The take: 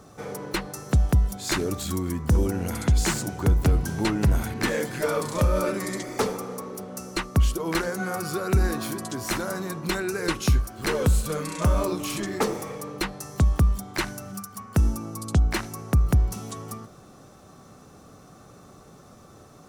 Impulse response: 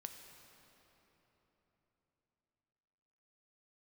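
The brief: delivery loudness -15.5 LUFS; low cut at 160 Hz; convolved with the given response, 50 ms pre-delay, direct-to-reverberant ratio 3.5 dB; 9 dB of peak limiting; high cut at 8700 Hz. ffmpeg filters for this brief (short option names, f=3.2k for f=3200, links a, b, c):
-filter_complex "[0:a]highpass=160,lowpass=8.7k,alimiter=limit=-20.5dB:level=0:latency=1,asplit=2[a][b];[1:a]atrim=start_sample=2205,adelay=50[c];[b][c]afir=irnorm=-1:irlink=0,volume=1dB[d];[a][d]amix=inputs=2:normalize=0,volume=15dB"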